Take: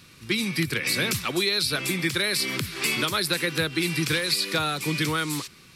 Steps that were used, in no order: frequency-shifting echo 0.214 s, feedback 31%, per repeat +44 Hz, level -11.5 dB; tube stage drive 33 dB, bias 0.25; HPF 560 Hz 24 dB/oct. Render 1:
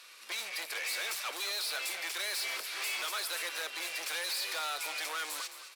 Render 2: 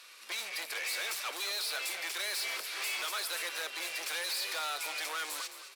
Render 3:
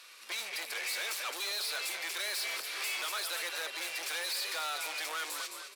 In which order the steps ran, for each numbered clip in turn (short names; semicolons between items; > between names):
tube stage > HPF > frequency-shifting echo; tube stage > frequency-shifting echo > HPF; frequency-shifting echo > tube stage > HPF